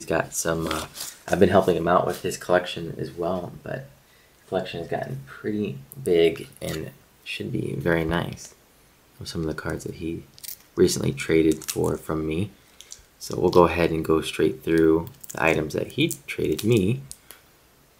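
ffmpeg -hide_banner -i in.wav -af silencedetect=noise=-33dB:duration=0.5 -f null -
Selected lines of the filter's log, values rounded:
silence_start: 3.82
silence_end: 4.52 | silence_duration: 0.70
silence_start: 8.47
silence_end: 9.21 | silence_duration: 0.74
silence_start: 17.31
silence_end: 18.00 | silence_duration: 0.69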